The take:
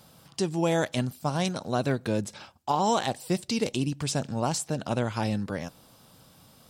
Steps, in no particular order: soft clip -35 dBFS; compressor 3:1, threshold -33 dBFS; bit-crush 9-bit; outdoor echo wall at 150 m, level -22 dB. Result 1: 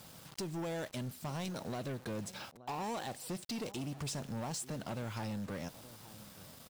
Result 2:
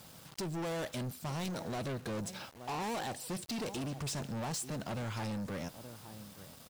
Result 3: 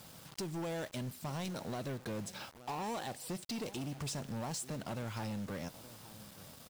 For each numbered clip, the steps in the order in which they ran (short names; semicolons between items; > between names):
compressor > bit-crush > outdoor echo > soft clip; outdoor echo > bit-crush > soft clip > compressor; compressor > outdoor echo > soft clip > bit-crush